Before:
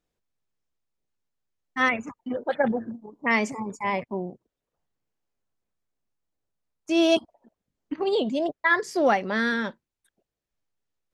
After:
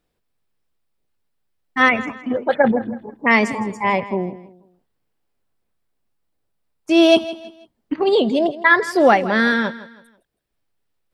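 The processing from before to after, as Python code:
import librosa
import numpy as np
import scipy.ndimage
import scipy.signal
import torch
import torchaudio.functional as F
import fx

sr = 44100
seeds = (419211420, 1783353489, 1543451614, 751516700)

y = fx.peak_eq(x, sr, hz=6500.0, db=-8.0, octaves=0.4)
y = fx.echo_feedback(y, sr, ms=162, feedback_pct=34, wet_db=-16)
y = y * 10.0 ** (8.0 / 20.0)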